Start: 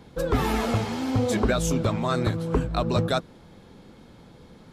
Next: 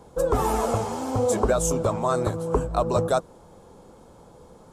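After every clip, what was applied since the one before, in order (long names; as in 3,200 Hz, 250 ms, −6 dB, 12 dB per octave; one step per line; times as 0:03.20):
octave-band graphic EQ 125/250/500/1,000/2,000/4,000/8,000 Hz −3/−5/+5/+6/−9/−8/+9 dB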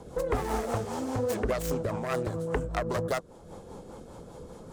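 phase distortion by the signal itself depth 0.28 ms
downward compressor 2 to 1, threshold −39 dBFS, peak gain reduction 12 dB
rotating-speaker cabinet horn 5 Hz
level +6 dB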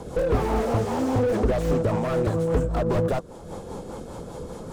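slew-rate limiting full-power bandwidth 17 Hz
level +9 dB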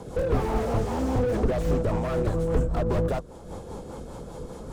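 sub-octave generator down 2 octaves, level −1 dB
level −3 dB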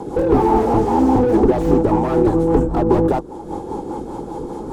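hollow resonant body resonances 330/830 Hz, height 17 dB, ringing for 25 ms
level +2 dB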